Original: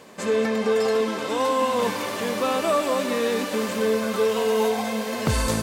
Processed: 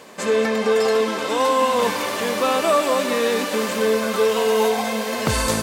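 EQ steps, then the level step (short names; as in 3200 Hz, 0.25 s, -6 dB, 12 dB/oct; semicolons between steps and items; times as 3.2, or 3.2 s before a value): low shelf 260 Hz -7 dB; +5.0 dB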